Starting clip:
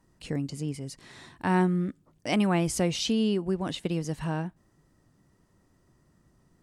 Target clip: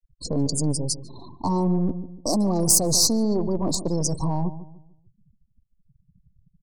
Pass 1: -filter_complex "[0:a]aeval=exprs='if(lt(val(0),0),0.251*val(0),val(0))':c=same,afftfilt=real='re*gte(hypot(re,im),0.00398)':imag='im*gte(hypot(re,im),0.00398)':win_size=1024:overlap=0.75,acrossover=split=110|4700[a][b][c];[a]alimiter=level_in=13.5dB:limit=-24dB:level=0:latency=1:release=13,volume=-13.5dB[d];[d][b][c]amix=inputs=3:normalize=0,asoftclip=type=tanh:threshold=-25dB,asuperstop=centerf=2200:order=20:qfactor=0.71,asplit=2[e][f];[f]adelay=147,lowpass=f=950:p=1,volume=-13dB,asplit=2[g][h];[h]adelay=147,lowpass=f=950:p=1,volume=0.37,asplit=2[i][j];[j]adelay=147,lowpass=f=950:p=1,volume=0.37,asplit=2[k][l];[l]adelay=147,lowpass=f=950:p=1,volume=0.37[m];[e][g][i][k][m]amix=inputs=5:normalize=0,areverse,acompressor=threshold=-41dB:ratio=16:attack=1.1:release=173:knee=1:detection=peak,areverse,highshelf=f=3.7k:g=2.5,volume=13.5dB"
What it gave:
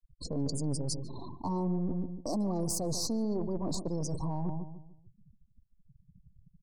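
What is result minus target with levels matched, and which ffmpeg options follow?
compressor: peak gain reduction +9.5 dB; 8000 Hz band -5.0 dB
-filter_complex "[0:a]aeval=exprs='if(lt(val(0),0),0.251*val(0),val(0))':c=same,afftfilt=real='re*gte(hypot(re,im),0.00398)':imag='im*gte(hypot(re,im),0.00398)':win_size=1024:overlap=0.75,acrossover=split=110|4700[a][b][c];[a]alimiter=level_in=13.5dB:limit=-24dB:level=0:latency=1:release=13,volume=-13.5dB[d];[d][b][c]amix=inputs=3:normalize=0,asoftclip=type=tanh:threshold=-25dB,asuperstop=centerf=2200:order=20:qfactor=0.71,asplit=2[e][f];[f]adelay=147,lowpass=f=950:p=1,volume=-13dB,asplit=2[g][h];[h]adelay=147,lowpass=f=950:p=1,volume=0.37,asplit=2[i][j];[j]adelay=147,lowpass=f=950:p=1,volume=0.37,asplit=2[k][l];[l]adelay=147,lowpass=f=950:p=1,volume=0.37[m];[e][g][i][k][m]amix=inputs=5:normalize=0,areverse,acompressor=threshold=-31dB:ratio=16:attack=1.1:release=173:knee=1:detection=peak,areverse,highshelf=f=3.7k:g=12.5,volume=13.5dB"

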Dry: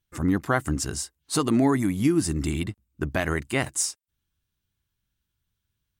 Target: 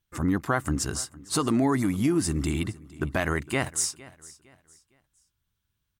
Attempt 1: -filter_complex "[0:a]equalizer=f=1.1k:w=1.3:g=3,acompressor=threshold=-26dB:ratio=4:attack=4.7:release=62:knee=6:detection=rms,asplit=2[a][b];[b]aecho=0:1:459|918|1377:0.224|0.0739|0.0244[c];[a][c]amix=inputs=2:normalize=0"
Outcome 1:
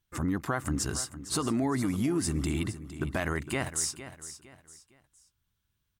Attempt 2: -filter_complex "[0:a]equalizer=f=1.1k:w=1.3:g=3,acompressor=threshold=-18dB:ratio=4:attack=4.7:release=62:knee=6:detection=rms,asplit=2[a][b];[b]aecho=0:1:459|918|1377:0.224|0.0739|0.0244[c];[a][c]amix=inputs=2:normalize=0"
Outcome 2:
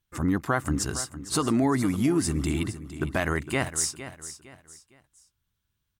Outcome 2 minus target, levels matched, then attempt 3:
echo-to-direct +7.5 dB
-filter_complex "[0:a]equalizer=f=1.1k:w=1.3:g=3,acompressor=threshold=-18dB:ratio=4:attack=4.7:release=62:knee=6:detection=rms,asplit=2[a][b];[b]aecho=0:1:459|918|1377:0.0944|0.0312|0.0103[c];[a][c]amix=inputs=2:normalize=0"

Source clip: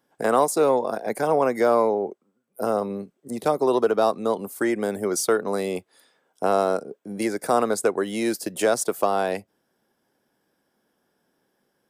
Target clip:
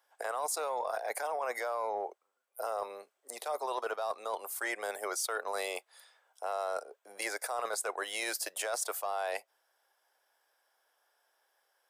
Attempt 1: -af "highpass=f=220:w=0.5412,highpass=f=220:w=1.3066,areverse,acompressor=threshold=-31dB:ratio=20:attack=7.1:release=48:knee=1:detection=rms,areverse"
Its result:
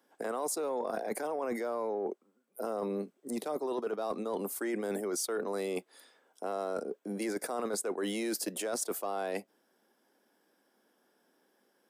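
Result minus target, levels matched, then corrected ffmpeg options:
250 Hz band +16.0 dB
-af "highpass=f=640:w=0.5412,highpass=f=640:w=1.3066,areverse,acompressor=threshold=-31dB:ratio=20:attack=7.1:release=48:knee=1:detection=rms,areverse"

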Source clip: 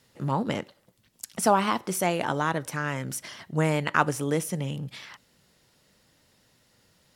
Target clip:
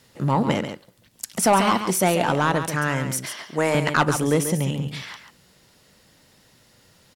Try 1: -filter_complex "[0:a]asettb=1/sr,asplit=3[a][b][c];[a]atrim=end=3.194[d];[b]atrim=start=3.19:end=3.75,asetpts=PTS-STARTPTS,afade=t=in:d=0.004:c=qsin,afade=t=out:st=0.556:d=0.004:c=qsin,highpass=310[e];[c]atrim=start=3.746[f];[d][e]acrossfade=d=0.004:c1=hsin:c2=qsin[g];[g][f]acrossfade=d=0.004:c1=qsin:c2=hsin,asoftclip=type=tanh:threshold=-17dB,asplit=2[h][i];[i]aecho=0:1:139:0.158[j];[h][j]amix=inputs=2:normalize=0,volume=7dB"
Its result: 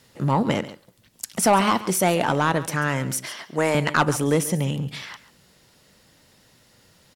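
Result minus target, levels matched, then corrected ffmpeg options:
echo-to-direct -7 dB
-filter_complex "[0:a]asettb=1/sr,asplit=3[a][b][c];[a]atrim=end=3.194[d];[b]atrim=start=3.19:end=3.75,asetpts=PTS-STARTPTS,afade=t=in:d=0.004:c=qsin,afade=t=out:st=0.556:d=0.004:c=qsin,highpass=310[e];[c]atrim=start=3.746[f];[d][e]acrossfade=d=0.004:c1=hsin:c2=qsin[g];[g][f]acrossfade=d=0.004:c1=qsin:c2=hsin,asoftclip=type=tanh:threshold=-17dB,asplit=2[h][i];[i]aecho=0:1:139:0.355[j];[h][j]amix=inputs=2:normalize=0,volume=7dB"

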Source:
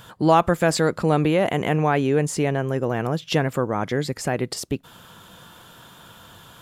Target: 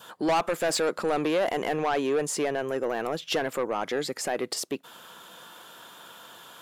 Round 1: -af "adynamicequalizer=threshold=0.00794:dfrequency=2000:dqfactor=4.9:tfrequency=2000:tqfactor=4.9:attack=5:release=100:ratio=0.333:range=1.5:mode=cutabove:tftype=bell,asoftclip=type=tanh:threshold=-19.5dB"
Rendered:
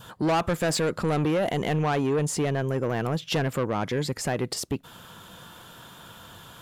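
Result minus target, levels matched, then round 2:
250 Hz band +2.5 dB
-af "adynamicequalizer=threshold=0.00794:dfrequency=2000:dqfactor=4.9:tfrequency=2000:tqfactor=4.9:attack=5:release=100:ratio=0.333:range=1.5:mode=cutabove:tftype=bell,highpass=340,asoftclip=type=tanh:threshold=-19.5dB"

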